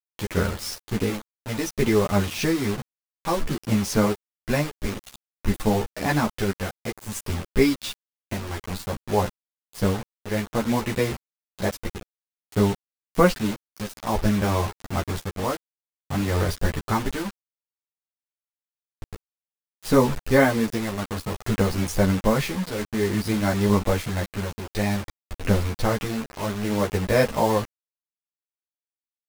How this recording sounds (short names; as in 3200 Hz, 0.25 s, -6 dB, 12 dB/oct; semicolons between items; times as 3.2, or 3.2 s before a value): tremolo triangle 0.56 Hz, depth 70%; a quantiser's noise floor 6-bit, dither none; a shimmering, thickened sound